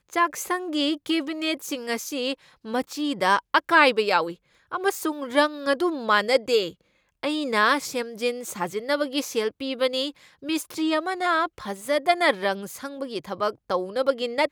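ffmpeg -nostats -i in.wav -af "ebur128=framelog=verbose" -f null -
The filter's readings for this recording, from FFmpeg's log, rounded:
Integrated loudness:
  I:         -24.6 LUFS
  Threshold: -34.8 LUFS
Loudness range:
  LRA:         3.8 LU
  Threshold: -44.6 LUFS
  LRA low:   -26.3 LUFS
  LRA high:  -22.5 LUFS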